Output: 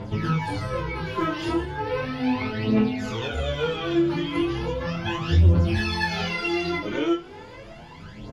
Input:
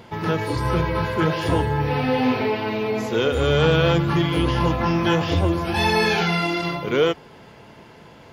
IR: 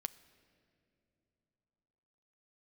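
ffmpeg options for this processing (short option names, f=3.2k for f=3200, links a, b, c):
-filter_complex "[0:a]lowpass=8.1k,lowshelf=f=190:g=6.5,acompressor=threshold=-24dB:ratio=4,aphaser=in_gain=1:out_gain=1:delay=3.4:decay=0.73:speed=0.36:type=triangular,aecho=1:1:24|76:0.631|0.168,asplit=2[a][b];[1:a]atrim=start_sample=2205,adelay=20[c];[b][c]afir=irnorm=-1:irlink=0,volume=-5dB[d];[a][d]amix=inputs=2:normalize=0,asplit=2[e][f];[f]adelay=7.4,afreqshift=1.6[g];[e][g]amix=inputs=2:normalize=1"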